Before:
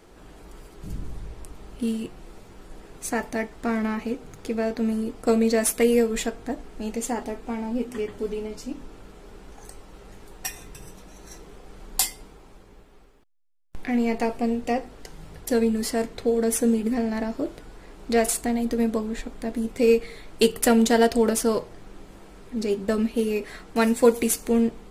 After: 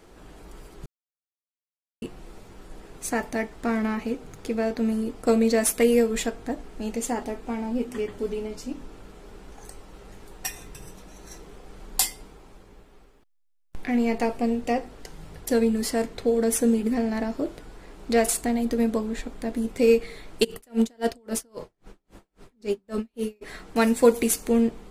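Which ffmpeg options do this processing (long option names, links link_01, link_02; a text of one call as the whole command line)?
ffmpeg -i in.wav -filter_complex "[0:a]asplit=3[link_01][link_02][link_03];[link_01]afade=type=out:start_time=20.43:duration=0.02[link_04];[link_02]aeval=exprs='val(0)*pow(10,-39*(0.5-0.5*cos(2*PI*3.7*n/s))/20)':channel_layout=same,afade=type=in:start_time=20.43:duration=0.02,afade=type=out:start_time=23.41:duration=0.02[link_05];[link_03]afade=type=in:start_time=23.41:duration=0.02[link_06];[link_04][link_05][link_06]amix=inputs=3:normalize=0,asplit=3[link_07][link_08][link_09];[link_07]atrim=end=0.86,asetpts=PTS-STARTPTS,afade=type=out:start_time=0.856:duration=0.004:curve=hsin[link_10];[link_08]atrim=start=0.86:end=2.02,asetpts=PTS-STARTPTS,volume=0[link_11];[link_09]atrim=start=2.02,asetpts=PTS-STARTPTS,afade=type=in:duration=0.004:curve=hsin[link_12];[link_10][link_11][link_12]concat=n=3:v=0:a=1" out.wav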